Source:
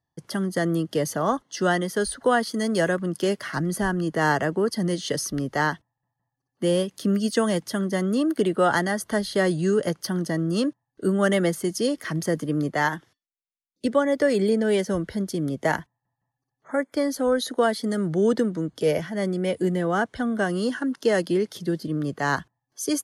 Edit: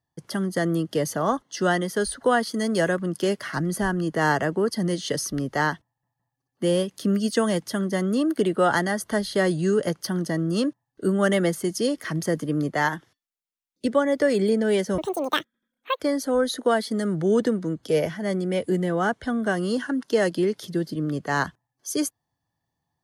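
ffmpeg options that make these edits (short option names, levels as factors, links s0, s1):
-filter_complex "[0:a]asplit=3[s0][s1][s2];[s0]atrim=end=14.984[s3];[s1]atrim=start=14.98:end=16.92,asetpts=PTS-STARTPTS,asetrate=84231,aresample=44100[s4];[s2]atrim=start=16.916[s5];[s3][s4]acrossfade=d=0.004:c1=hsin:c2=hsin[s6];[s6][s5]acrossfade=d=0.004:c1=hsin:c2=hsin"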